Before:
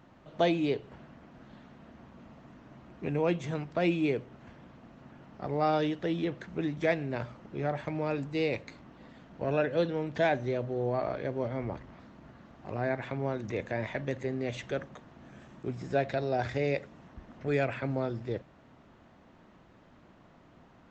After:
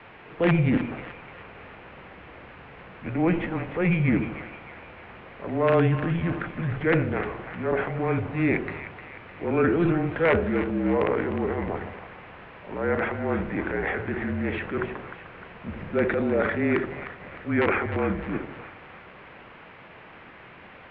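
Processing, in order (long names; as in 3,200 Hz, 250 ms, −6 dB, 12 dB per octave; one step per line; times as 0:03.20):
transient designer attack −7 dB, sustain +9 dB
background noise white −47 dBFS
wrap-around overflow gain 17.5 dB
on a send: echo with a time of its own for lows and highs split 930 Hz, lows 81 ms, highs 305 ms, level −10 dB
on the sum: single-sideband voice off tune −170 Hz 280–2,700 Hz
level +7.5 dB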